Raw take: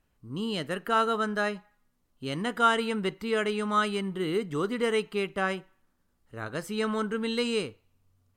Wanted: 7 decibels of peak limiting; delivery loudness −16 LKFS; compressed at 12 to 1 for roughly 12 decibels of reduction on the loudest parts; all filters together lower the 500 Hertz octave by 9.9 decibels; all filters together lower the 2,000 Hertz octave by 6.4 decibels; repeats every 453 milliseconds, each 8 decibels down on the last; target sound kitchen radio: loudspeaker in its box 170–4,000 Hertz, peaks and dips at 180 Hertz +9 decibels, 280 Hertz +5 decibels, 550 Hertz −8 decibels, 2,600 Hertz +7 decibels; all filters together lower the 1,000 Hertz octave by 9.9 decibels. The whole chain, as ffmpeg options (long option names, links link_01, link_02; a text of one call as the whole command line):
ffmpeg -i in.wav -af "equalizer=frequency=500:width_type=o:gain=-8.5,equalizer=frequency=1000:width_type=o:gain=-9,equalizer=frequency=2000:width_type=o:gain=-7.5,acompressor=threshold=-38dB:ratio=12,alimiter=level_in=12dB:limit=-24dB:level=0:latency=1,volume=-12dB,highpass=170,equalizer=frequency=180:width_type=q:width=4:gain=9,equalizer=frequency=280:width_type=q:width=4:gain=5,equalizer=frequency=550:width_type=q:width=4:gain=-8,equalizer=frequency=2600:width_type=q:width=4:gain=7,lowpass=frequency=4000:width=0.5412,lowpass=frequency=4000:width=1.3066,aecho=1:1:453|906|1359|1812|2265:0.398|0.159|0.0637|0.0255|0.0102,volume=27dB" out.wav